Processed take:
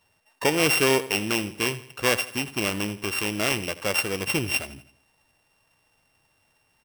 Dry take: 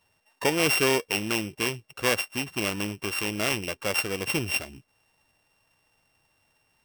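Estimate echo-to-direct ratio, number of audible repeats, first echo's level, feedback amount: -15.0 dB, 3, -16.0 dB, 44%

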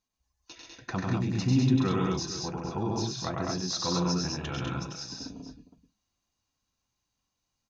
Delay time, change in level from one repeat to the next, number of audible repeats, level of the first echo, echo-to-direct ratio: 96 ms, no steady repeat, 4, -3.0 dB, 2.0 dB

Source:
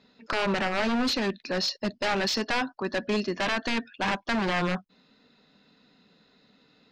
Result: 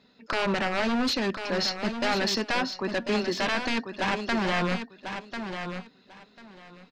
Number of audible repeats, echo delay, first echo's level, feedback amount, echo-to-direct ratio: 2, 1.044 s, -8.0 dB, 18%, -8.0 dB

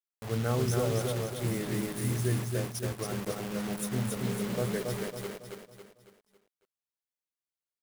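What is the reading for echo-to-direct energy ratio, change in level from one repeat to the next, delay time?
-2.5 dB, -7.5 dB, 0.276 s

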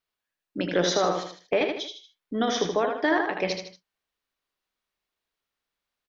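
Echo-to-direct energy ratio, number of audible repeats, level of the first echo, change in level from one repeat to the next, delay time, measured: -4.0 dB, 3, -5.0 dB, -7.5 dB, 78 ms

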